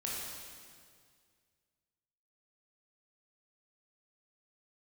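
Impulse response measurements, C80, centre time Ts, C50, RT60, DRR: 0.5 dB, 117 ms, -1.5 dB, 2.0 s, -5.0 dB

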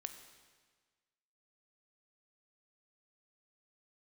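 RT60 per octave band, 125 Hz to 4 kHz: 1.5 s, 1.5 s, 1.5 s, 1.5 s, 1.5 s, 1.4 s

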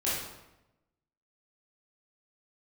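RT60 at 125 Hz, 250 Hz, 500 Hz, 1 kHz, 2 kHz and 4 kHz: 1.2 s, 1.1 s, 0.95 s, 0.90 s, 0.80 s, 0.70 s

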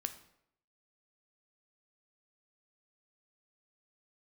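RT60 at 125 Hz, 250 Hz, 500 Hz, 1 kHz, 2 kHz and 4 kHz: 0.75 s, 0.70 s, 0.75 s, 0.70 s, 0.65 s, 0.55 s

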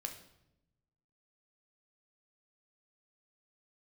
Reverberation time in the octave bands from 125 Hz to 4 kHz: 1.5 s, 1.3 s, 0.95 s, 0.75 s, 0.70 s, 0.65 s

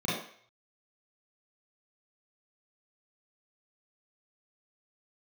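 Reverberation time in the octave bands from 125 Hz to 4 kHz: 0.40 s, 0.40 s, 0.55 s, 0.55 s, 0.60 s, 0.50 s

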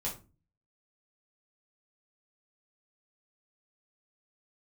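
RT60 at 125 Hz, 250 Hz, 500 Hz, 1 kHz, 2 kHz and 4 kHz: 0.60 s, 0.50 s, 0.35 s, 0.30 s, 0.25 s, 0.20 s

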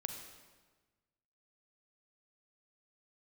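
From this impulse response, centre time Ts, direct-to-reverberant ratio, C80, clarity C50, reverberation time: 34 ms, 4.5 dB, 7.0 dB, 5.5 dB, 1.3 s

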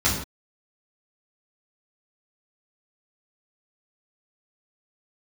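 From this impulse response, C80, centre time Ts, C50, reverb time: 7.5 dB, 38 ms, 4.5 dB, no single decay rate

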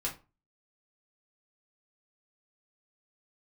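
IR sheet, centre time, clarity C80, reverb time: 17 ms, 18.5 dB, 0.30 s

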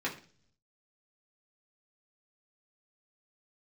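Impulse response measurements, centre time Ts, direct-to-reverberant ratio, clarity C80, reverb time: 17 ms, -5.0 dB, 16.0 dB, 0.45 s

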